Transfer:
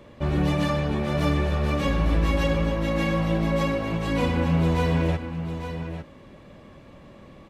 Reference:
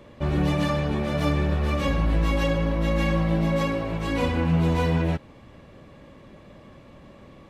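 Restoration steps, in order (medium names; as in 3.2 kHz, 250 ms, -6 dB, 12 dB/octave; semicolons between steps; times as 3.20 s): inverse comb 852 ms -9.5 dB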